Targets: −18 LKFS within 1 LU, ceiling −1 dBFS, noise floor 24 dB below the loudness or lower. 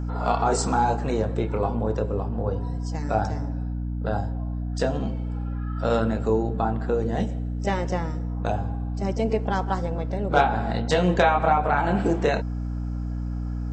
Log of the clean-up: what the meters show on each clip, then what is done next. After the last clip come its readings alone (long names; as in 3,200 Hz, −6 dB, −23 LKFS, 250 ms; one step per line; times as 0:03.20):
mains hum 60 Hz; hum harmonics up to 300 Hz; level of the hum −26 dBFS; integrated loudness −25.5 LKFS; sample peak −5.0 dBFS; target loudness −18.0 LKFS
→ mains-hum notches 60/120/180/240/300 Hz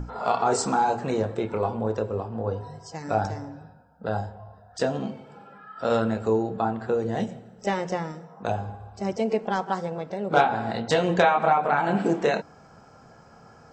mains hum none found; integrated loudness −26.0 LKFS; sample peak −5.0 dBFS; target loudness −18.0 LKFS
→ level +8 dB
brickwall limiter −1 dBFS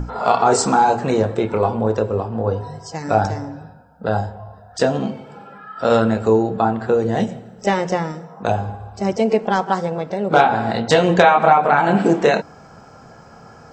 integrated loudness −18.5 LKFS; sample peak −1.0 dBFS; background noise floor −44 dBFS